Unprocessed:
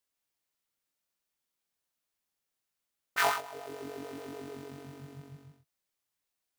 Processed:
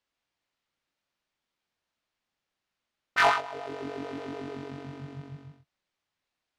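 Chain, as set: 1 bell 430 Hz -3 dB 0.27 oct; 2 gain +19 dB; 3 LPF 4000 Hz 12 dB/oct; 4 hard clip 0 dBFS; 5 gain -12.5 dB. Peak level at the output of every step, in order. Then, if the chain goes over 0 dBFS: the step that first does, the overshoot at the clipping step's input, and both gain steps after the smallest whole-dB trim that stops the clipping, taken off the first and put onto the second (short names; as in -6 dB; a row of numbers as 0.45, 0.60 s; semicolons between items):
-12.0, +7.0, +6.5, 0.0, -12.5 dBFS; step 2, 6.5 dB; step 2 +12 dB, step 5 -5.5 dB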